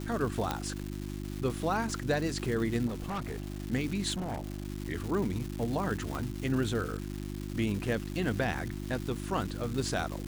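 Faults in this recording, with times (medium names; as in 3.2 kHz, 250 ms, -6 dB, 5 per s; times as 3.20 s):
crackle 510 per s -36 dBFS
hum 50 Hz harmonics 7 -38 dBFS
0.51 s: pop -15 dBFS
2.86–3.64 s: clipped -31.5 dBFS
4.13–4.67 s: clipped -31.5 dBFS
6.15 s: pop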